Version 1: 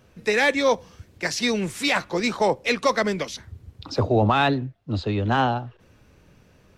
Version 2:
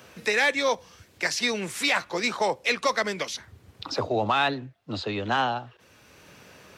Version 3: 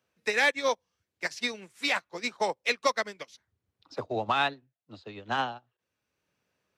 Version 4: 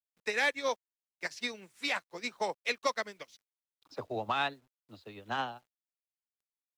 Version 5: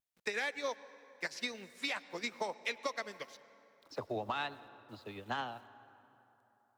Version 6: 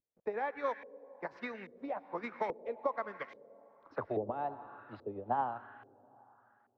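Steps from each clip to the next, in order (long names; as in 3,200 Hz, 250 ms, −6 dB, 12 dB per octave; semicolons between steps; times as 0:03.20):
high-pass filter 64 Hz; low-shelf EQ 420 Hz −12 dB; multiband upward and downward compressor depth 40%
expander for the loud parts 2.5 to 1, over −39 dBFS
bit reduction 11 bits; level −5 dB
downward compressor, threshold −35 dBFS, peak gain reduction 10.5 dB; pitch vibrato 2.1 Hz 48 cents; convolution reverb RT60 3.4 s, pre-delay 88 ms, DRR 16.5 dB; level +1.5 dB
auto-filter low-pass saw up 1.2 Hz 400–2,100 Hz; level +1 dB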